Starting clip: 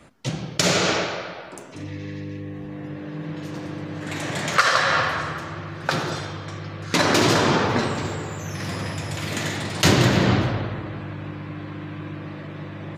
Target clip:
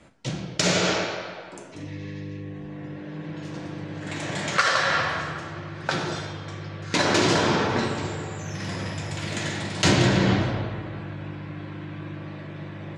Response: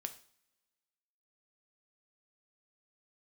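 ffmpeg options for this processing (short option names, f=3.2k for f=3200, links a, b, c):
-filter_complex "[0:a]lowpass=f=9k:w=0.5412,lowpass=f=9k:w=1.3066,bandreject=f=1.2k:w=15[a];[1:a]atrim=start_sample=2205[b];[a][b]afir=irnorm=-1:irlink=0"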